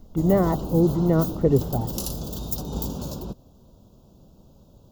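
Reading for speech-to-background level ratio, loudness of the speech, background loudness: 8.0 dB, -22.5 LUFS, -30.5 LUFS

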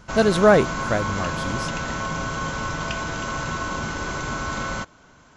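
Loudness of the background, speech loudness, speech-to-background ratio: -27.5 LUFS, -21.0 LUFS, 6.5 dB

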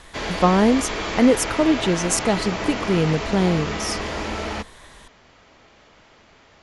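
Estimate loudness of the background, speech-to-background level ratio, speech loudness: -27.5 LUFS, 6.5 dB, -21.0 LUFS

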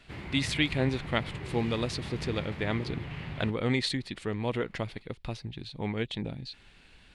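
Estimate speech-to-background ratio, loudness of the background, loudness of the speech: 7.5 dB, -40.0 LUFS, -32.5 LUFS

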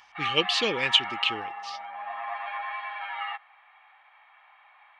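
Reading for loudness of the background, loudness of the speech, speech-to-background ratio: -34.0 LUFS, -24.5 LUFS, 9.5 dB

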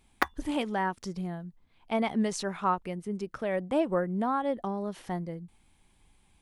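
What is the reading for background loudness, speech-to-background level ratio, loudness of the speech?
-33.0 LUFS, 1.5 dB, -31.5 LUFS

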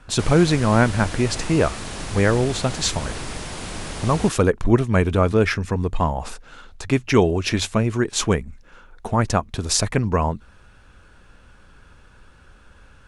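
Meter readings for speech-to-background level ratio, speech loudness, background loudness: 11.0 dB, -21.0 LUFS, -32.0 LUFS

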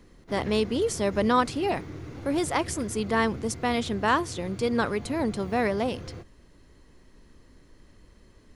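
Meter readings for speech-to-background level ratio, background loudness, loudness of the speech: 13.5 dB, -40.5 LUFS, -27.0 LUFS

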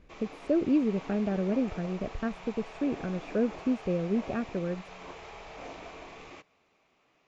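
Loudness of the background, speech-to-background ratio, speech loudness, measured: -45.0 LUFS, 14.0 dB, -31.0 LUFS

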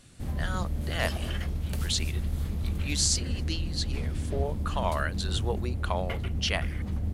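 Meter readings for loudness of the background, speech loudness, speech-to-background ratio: -33.0 LUFS, -32.5 LUFS, 0.5 dB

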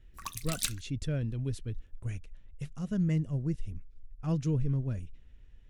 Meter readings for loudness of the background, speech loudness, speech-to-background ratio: -36.0 LUFS, -34.5 LUFS, 1.5 dB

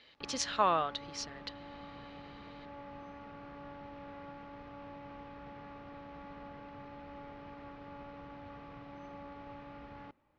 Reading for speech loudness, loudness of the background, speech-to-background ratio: -33.5 LUFS, -49.5 LUFS, 16.0 dB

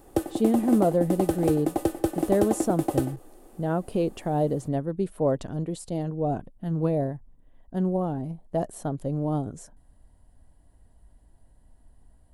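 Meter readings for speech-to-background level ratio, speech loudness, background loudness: 1.0 dB, -27.5 LUFS, -28.5 LUFS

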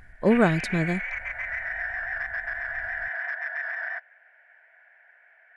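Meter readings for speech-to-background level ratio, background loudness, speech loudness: 7.0 dB, -31.0 LUFS, -24.0 LUFS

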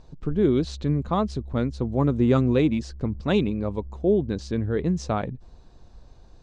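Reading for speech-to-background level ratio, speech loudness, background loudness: 17.0 dB, -24.5 LUFS, -41.5 LUFS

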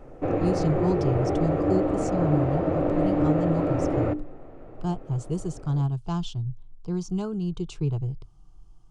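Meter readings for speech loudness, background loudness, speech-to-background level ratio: -29.5 LUFS, -25.5 LUFS, -4.0 dB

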